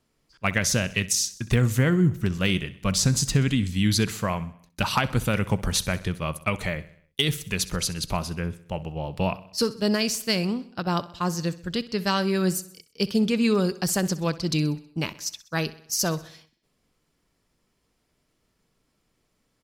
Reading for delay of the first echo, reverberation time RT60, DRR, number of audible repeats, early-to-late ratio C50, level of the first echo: 64 ms, none, none, 4, none, -18.0 dB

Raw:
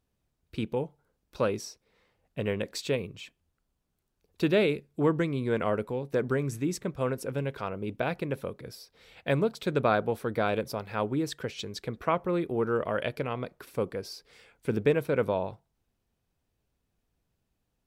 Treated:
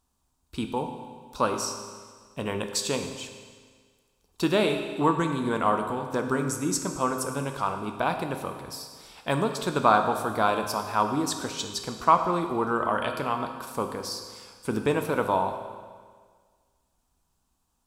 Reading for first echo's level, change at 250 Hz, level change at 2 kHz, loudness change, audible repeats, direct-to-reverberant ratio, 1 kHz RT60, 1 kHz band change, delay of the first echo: none, +2.0 dB, +3.0 dB, +3.0 dB, none, 5.0 dB, 1.7 s, +10.0 dB, none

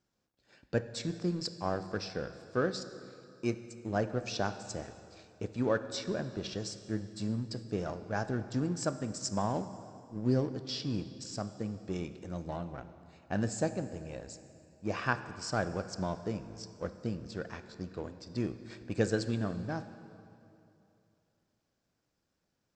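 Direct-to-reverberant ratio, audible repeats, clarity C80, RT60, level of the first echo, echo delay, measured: 11.0 dB, none, 12.5 dB, 2.8 s, none, none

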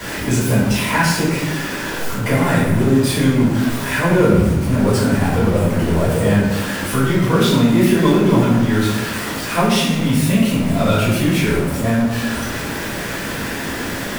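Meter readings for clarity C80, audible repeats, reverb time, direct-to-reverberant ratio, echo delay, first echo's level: 3.0 dB, none, 1.2 s, -11.0 dB, none, none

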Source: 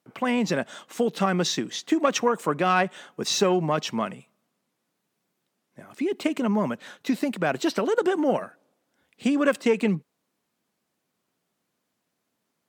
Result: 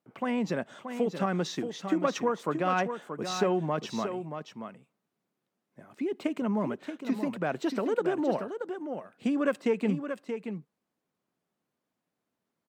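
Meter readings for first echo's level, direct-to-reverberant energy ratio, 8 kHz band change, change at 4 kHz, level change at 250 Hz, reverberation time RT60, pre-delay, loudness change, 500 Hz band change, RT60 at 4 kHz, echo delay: -8.0 dB, none, -12.0 dB, -10.5 dB, -4.5 dB, none, none, -6.0 dB, -4.5 dB, none, 0.629 s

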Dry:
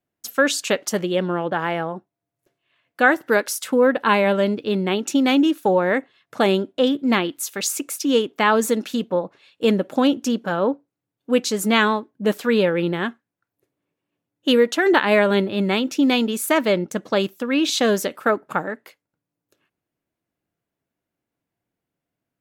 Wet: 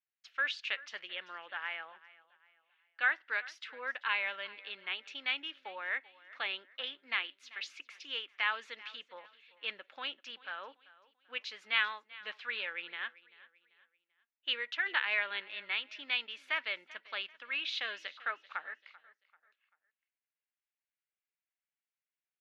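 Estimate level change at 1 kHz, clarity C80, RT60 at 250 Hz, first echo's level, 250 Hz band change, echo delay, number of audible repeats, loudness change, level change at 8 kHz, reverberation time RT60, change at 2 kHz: -19.0 dB, none, none, -20.0 dB, under -40 dB, 0.389 s, 2, -16.0 dB, under -30 dB, none, -9.5 dB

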